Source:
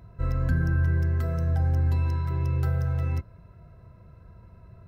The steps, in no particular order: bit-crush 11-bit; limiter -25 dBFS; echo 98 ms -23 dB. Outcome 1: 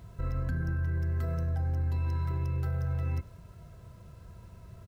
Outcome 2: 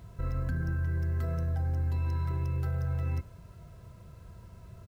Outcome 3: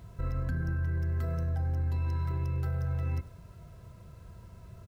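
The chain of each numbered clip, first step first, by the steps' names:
bit-crush > limiter > echo; limiter > echo > bit-crush; echo > bit-crush > limiter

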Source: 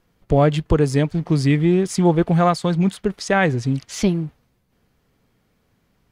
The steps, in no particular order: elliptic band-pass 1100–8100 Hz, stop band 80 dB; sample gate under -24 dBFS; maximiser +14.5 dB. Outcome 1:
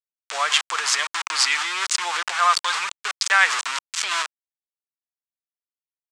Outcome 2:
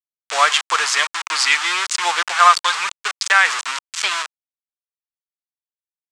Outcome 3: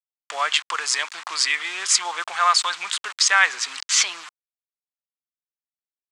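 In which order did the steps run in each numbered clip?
sample gate > maximiser > elliptic band-pass; sample gate > elliptic band-pass > maximiser; maximiser > sample gate > elliptic band-pass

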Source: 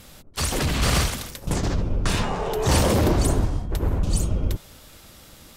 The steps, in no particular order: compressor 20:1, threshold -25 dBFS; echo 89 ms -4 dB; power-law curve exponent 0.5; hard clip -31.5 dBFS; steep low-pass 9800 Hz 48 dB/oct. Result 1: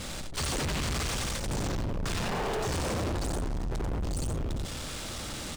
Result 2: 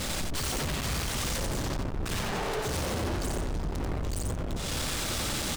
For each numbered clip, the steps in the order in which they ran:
compressor > echo > hard clip > steep low-pass > power-law curve; steep low-pass > power-law curve > compressor > hard clip > echo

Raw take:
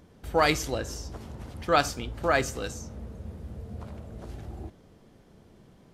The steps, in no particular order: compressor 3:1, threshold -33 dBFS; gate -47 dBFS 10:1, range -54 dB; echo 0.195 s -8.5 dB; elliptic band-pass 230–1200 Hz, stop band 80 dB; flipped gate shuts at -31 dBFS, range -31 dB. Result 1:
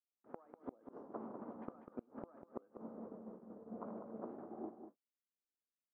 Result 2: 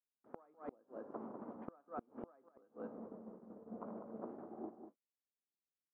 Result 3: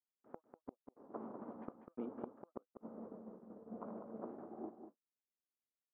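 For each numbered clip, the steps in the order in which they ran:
elliptic band-pass > compressor > gate > flipped gate > echo; compressor > elliptic band-pass > gate > echo > flipped gate; compressor > elliptic band-pass > flipped gate > gate > echo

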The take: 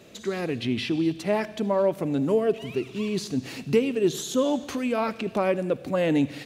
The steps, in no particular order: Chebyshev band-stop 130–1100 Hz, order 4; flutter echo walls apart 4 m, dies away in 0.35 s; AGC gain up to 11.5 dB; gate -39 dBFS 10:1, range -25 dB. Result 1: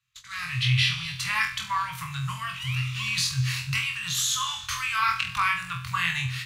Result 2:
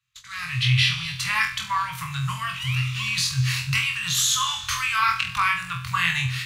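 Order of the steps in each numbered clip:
flutter echo > AGC > Chebyshev band-stop > gate; Chebyshev band-stop > AGC > flutter echo > gate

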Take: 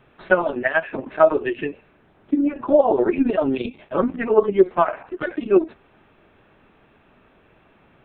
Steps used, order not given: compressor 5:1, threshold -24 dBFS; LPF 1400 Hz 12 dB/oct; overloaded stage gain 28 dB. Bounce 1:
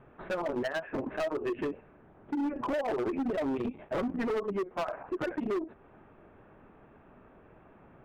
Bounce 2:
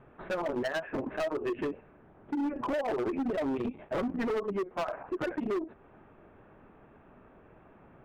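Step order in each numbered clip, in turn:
compressor > LPF > overloaded stage; LPF > compressor > overloaded stage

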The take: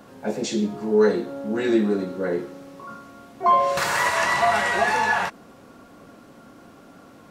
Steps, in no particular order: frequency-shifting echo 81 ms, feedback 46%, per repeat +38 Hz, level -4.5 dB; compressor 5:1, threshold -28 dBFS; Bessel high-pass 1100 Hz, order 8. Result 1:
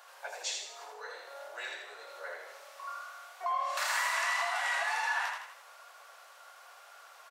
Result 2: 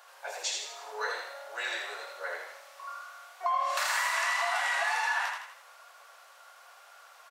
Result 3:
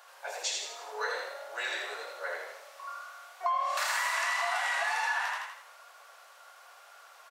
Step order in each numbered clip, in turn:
compressor > frequency-shifting echo > Bessel high-pass; Bessel high-pass > compressor > frequency-shifting echo; frequency-shifting echo > Bessel high-pass > compressor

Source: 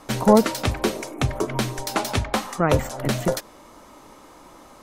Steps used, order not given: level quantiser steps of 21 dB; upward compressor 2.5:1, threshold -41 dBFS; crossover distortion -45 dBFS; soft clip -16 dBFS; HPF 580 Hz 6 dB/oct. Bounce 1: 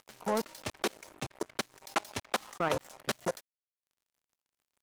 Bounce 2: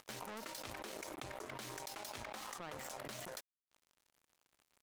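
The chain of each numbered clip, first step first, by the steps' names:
level quantiser > soft clip > HPF > upward compressor > crossover distortion; soft clip > HPF > level quantiser > upward compressor > crossover distortion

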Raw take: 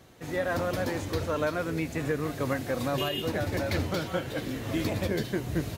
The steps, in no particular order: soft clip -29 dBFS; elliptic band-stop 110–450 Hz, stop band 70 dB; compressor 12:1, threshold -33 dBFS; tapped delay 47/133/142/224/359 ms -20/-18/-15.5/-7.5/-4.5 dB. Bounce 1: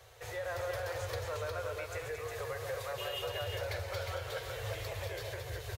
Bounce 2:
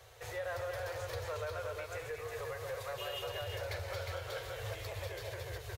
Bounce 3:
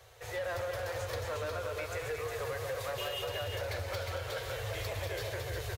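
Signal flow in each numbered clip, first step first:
compressor > elliptic band-stop > soft clip > tapped delay; tapped delay > compressor > soft clip > elliptic band-stop; elliptic band-stop > soft clip > tapped delay > compressor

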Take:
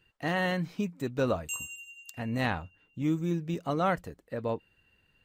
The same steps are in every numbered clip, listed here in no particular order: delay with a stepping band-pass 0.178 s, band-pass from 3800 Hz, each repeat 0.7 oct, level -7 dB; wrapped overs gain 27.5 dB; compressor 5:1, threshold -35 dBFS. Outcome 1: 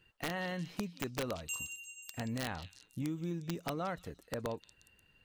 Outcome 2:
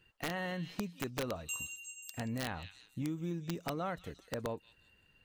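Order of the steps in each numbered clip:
compressor > wrapped overs > delay with a stepping band-pass; delay with a stepping band-pass > compressor > wrapped overs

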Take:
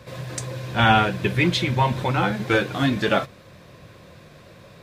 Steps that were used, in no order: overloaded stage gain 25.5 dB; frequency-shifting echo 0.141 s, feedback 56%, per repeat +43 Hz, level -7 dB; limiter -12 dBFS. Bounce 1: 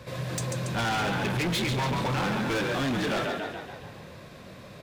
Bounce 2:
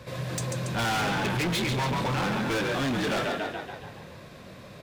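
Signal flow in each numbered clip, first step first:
limiter > frequency-shifting echo > overloaded stage; frequency-shifting echo > overloaded stage > limiter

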